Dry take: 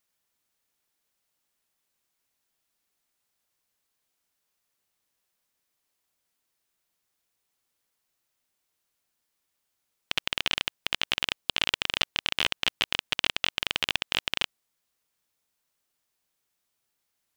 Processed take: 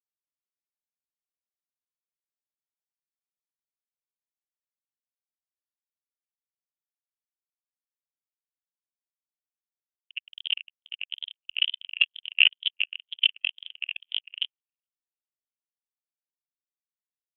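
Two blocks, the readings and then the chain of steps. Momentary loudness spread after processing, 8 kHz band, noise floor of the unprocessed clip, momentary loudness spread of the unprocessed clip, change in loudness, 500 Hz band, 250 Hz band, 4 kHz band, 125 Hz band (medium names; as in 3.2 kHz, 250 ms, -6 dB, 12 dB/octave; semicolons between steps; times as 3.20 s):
17 LU, under -35 dB, -80 dBFS, 4 LU, +1.0 dB, under -20 dB, under -25 dB, +1.0 dB, under -25 dB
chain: wow and flutter 140 cents; high-pass 44 Hz 12 dB/octave; filtered feedback delay 417 ms, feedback 83%, low-pass 4 kHz, level -19 dB; level rider gain up to 6.5 dB; spectral contrast expander 4:1; trim +1 dB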